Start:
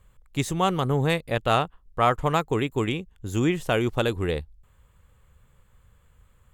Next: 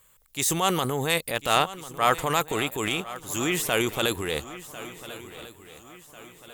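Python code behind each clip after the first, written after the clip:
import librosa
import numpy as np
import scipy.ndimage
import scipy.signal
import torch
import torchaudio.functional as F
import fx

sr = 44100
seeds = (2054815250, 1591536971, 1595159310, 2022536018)

y = fx.riaa(x, sr, side='recording')
y = fx.transient(y, sr, attack_db=-5, sustain_db=7)
y = fx.echo_swing(y, sr, ms=1395, ratio=3, feedback_pct=41, wet_db=-16.0)
y = y * librosa.db_to_amplitude(1.0)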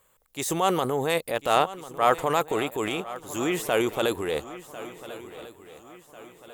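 y = fx.peak_eq(x, sr, hz=550.0, db=10.0, octaves=2.7)
y = y * librosa.db_to_amplitude(-6.5)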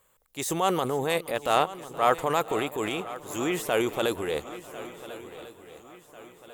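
y = fx.echo_feedback(x, sr, ms=473, feedback_pct=54, wet_db=-19)
y = y * librosa.db_to_amplitude(-1.5)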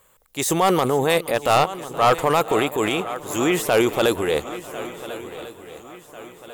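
y = np.clip(x, -10.0 ** (-18.0 / 20.0), 10.0 ** (-18.0 / 20.0))
y = y * librosa.db_to_amplitude(8.0)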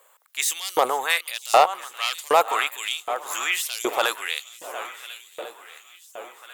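y = fx.filter_lfo_highpass(x, sr, shape='saw_up', hz=1.3, low_hz=510.0, high_hz=6100.0, q=1.5)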